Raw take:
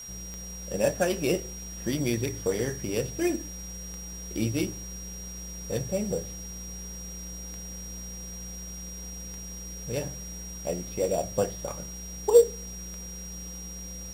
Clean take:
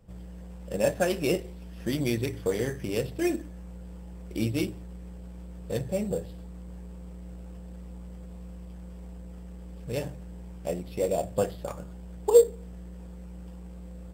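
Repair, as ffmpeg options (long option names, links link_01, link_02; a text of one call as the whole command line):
ffmpeg -i in.wav -af "adeclick=threshold=4,bandreject=frequency=5700:width=30,afwtdn=0.0028" out.wav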